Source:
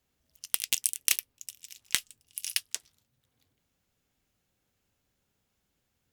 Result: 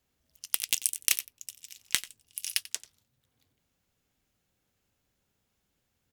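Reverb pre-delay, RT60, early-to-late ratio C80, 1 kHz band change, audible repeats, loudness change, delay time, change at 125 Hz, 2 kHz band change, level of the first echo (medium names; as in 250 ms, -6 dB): no reverb, no reverb, no reverb, 0.0 dB, 1, 0.0 dB, 90 ms, 0.0 dB, 0.0 dB, -18.0 dB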